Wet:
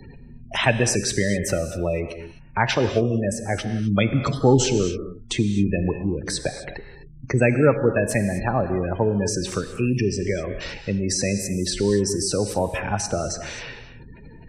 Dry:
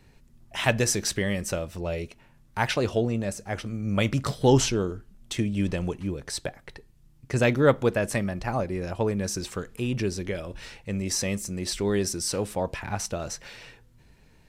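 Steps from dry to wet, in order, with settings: spectral gate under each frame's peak -20 dB strong; gated-style reverb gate 280 ms flat, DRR 9 dB; three bands compressed up and down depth 40%; trim +5 dB

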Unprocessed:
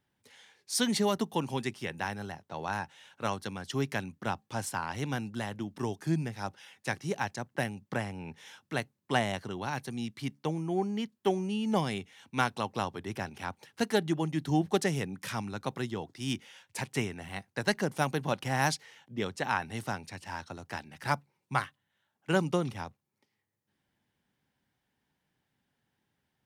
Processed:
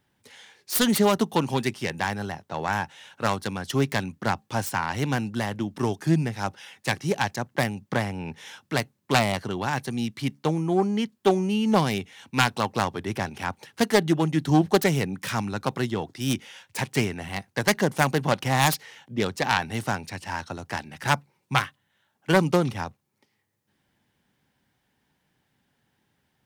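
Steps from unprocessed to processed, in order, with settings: self-modulated delay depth 0.19 ms; trim +8 dB

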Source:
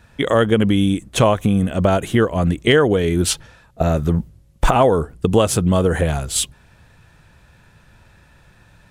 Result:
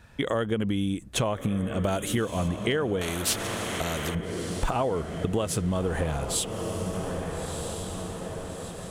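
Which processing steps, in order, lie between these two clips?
echo that smears into a reverb 1314 ms, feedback 55%, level -12 dB; compression 3:1, threshold -23 dBFS, peak gain reduction 11 dB; 1.84–2.48 s: treble shelf 4 kHz +11 dB; 3.01–4.15 s: spectrum-flattening compressor 2:1; trim -3 dB

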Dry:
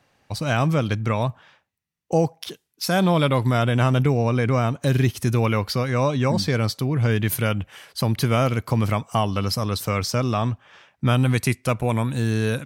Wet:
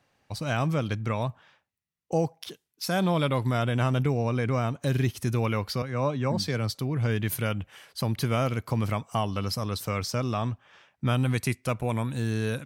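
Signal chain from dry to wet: 5.82–6.75 s: three bands expanded up and down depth 70%; trim -6 dB

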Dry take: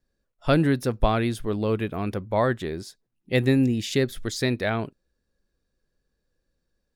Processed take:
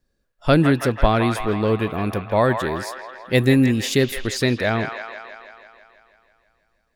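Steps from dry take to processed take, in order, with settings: 2.04–4.21 s: treble shelf 9.3 kHz +8.5 dB; feedback echo behind a band-pass 163 ms, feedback 66%, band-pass 1.5 kHz, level -5 dB; trim +4.5 dB

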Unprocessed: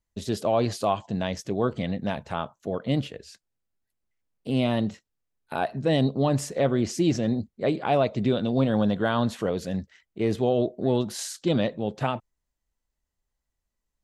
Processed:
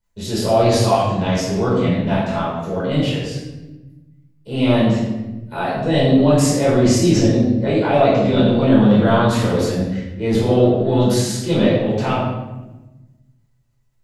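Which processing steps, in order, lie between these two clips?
transient shaper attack -3 dB, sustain +7 dB; simulated room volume 550 m³, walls mixed, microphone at 4.8 m; trim -2.5 dB

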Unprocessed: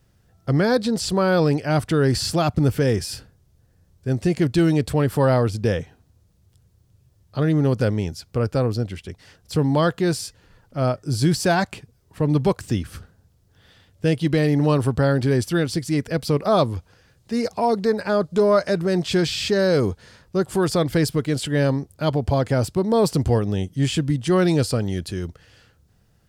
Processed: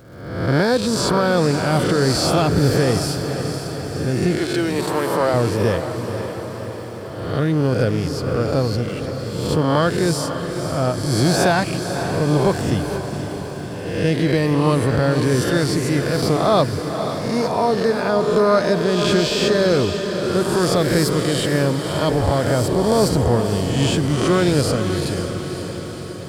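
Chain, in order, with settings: reverse spectral sustain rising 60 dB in 1.00 s; 4.35–5.34 s: high-pass 370 Hz 12 dB/octave; echo that smears into a reverb 521 ms, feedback 64%, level -8 dB; crackle 450 per s -44 dBFS

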